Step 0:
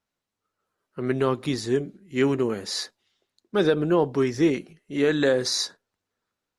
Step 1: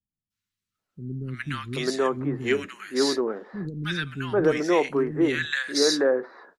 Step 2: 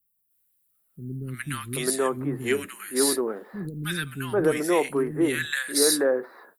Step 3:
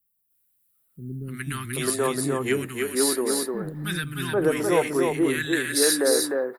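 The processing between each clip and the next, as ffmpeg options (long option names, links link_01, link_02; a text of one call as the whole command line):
ffmpeg -i in.wav -filter_complex "[0:a]adynamicequalizer=threshold=0.00891:dfrequency=1700:dqfactor=1:tfrequency=1700:tqfactor=1:attack=5:release=100:ratio=0.375:range=3.5:mode=boostabove:tftype=bell,acrossover=split=230|1400[link_01][link_02][link_03];[link_03]adelay=300[link_04];[link_02]adelay=780[link_05];[link_01][link_05][link_04]amix=inputs=3:normalize=0" out.wav
ffmpeg -i in.wav -af "aexciter=amount=6.9:drive=9.7:freq=8800,volume=-1dB" out.wav
ffmpeg -i in.wav -af "aecho=1:1:303:0.668" out.wav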